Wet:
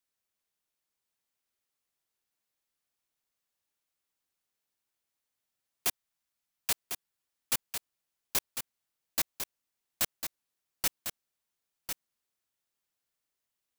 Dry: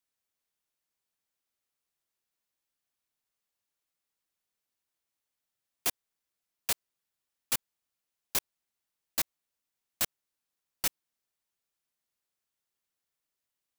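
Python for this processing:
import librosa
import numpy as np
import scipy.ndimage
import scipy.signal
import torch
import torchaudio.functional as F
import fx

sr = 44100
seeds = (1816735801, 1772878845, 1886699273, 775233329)

y = fx.peak_eq(x, sr, hz=420.0, db=-12.5, octaves=0.56, at=(5.87, 6.71))
y = y + 10.0 ** (-7.5 / 20.0) * np.pad(y, (int(1050 * sr / 1000.0), 0))[:len(y)]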